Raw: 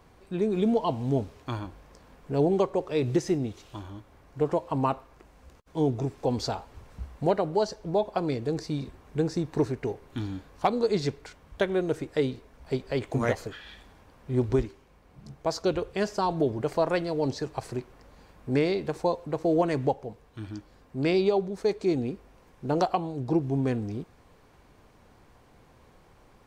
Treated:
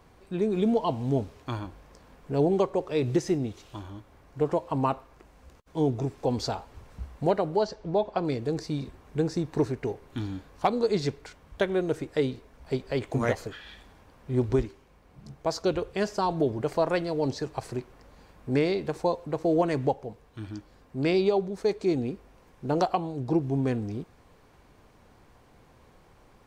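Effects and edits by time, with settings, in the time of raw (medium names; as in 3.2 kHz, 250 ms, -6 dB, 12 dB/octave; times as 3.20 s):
7.56–8.25 s: low-pass 5.2 kHz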